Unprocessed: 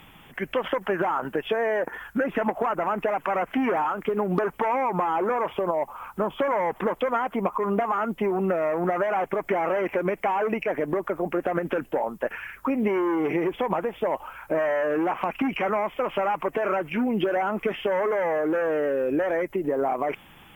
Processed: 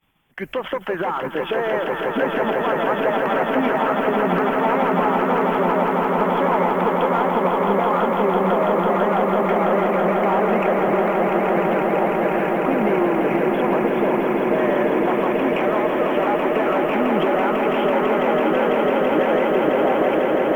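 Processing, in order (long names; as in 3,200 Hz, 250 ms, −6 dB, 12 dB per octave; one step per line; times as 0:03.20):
downward expander −38 dBFS
in parallel at −7 dB: soft clipping −21.5 dBFS, distortion −14 dB
on the sum: echo that builds up and dies away 166 ms, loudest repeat 8, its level −6.5 dB
level −1.5 dB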